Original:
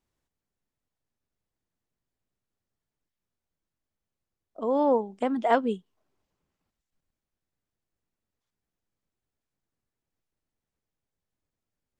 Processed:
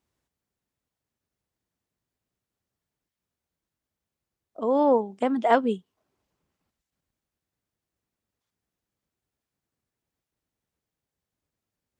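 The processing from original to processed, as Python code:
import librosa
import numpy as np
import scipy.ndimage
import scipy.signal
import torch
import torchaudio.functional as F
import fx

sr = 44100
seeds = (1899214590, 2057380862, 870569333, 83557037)

y = scipy.signal.sosfilt(scipy.signal.butter(2, 46.0, 'highpass', fs=sr, output='sos'), x)
y = F.gain(torch.from_numpy(y), 2.5).numpy()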